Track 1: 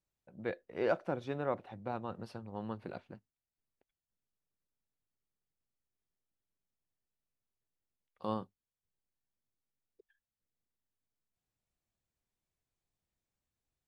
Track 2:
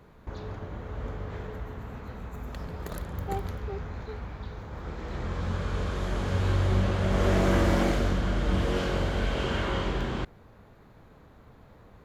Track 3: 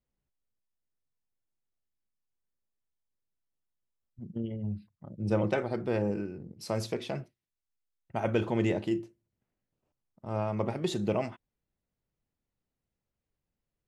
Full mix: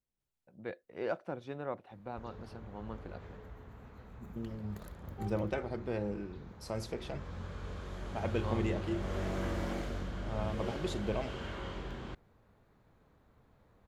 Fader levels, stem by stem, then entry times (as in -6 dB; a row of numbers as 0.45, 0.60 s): -4.0, -12.5, -6.5 dB; 0.20, 1.90, 0.00 s